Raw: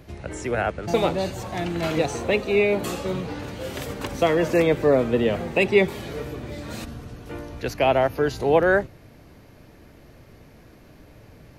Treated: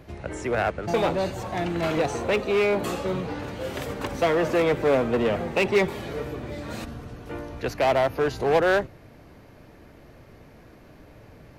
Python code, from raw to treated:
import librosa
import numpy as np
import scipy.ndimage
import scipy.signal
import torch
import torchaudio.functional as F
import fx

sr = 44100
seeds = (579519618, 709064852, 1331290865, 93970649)

p1 = fx.high_shelf(x, sr, hz=2300.0, db=-8.5)
p2 = 10.0 ** (-21.0 / 20.0) * (np.abs((p1 / 10.0 ** (-21.0 / 20.0) + 3.0) % 4.0 - 2.0) - 1.0)
p3 = p1 + F.gain(torch.from_numpy(p2), -4.5).numpy()
y = fx.low_shelf(p3, sr, hz=480.0, db=-5.5)